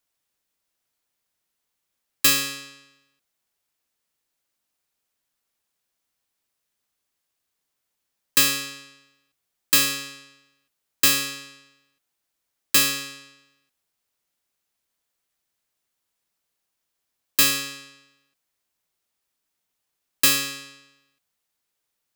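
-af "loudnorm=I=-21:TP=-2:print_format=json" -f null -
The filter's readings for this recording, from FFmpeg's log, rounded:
"input_i" : "-20.3",
"input_tp" : "-4.5",
"input_lra" : "3.0",
"input_thresh" : "-33.2",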